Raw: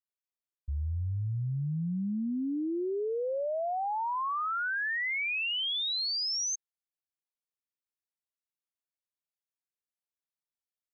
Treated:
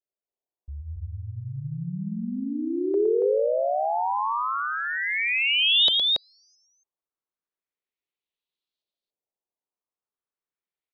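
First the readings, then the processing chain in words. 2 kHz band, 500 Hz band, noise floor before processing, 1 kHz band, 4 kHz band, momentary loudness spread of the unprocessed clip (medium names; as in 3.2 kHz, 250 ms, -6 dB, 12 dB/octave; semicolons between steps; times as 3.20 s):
+5.5 dB, +9.5 dB, under -85 dBFS, +6.0 dB, +10.0 dB, 5 LU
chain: fifteen-band graphic EQ 100 Hz -5 dB, 400 Hz +7 dB, 1.6 kHz -6 dB, 4 kHz +8 dB; LFO low-pass saw up 0.34 Hz 570–4300 Hz; loudspeakers at several distances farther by 39 m -7 dB, 96 m -2 dB; trim -1.5 dB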